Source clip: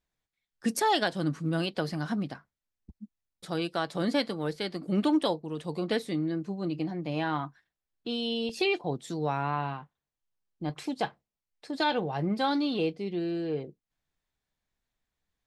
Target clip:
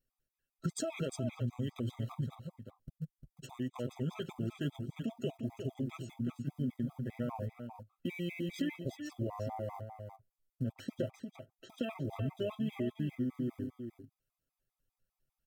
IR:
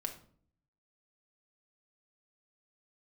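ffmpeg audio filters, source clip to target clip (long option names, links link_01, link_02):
-filter_complex "[0:a]asplit=2[link_01][link_02];[link_02]aeval=exprs='val(0)*gte(abs(val(0)),0.0126)':channel_layout=same,volume=-10dB[link_03];[link_01][link_03]amix=inputs=2:normalize=0,tiltshelf=frequency=1300:gain=5.5,aecho=1:1:5.8:0.53,alimiter=limit=-14dB:level=0:latency=1:release=25,acompressor=threshold=-27dB:ratio=6,asetrate=33038,aresample=44100,atempo=1.33484,aemphasis=mode=production:type=50fm,aecho=1:1:352:0.422,afftfilt=real='re*gt(sin(2*PI*5*pts/sr)*(1-2*mod(floor(b*sr/1024/650),2)),0)':imag='im*gt(sin(2*PI*5*pts/sr)*(1-2*mod(floor(b*sr/1024/650),2)),0)':win_size=1024:overlap=0.75,volume=-4.5dB"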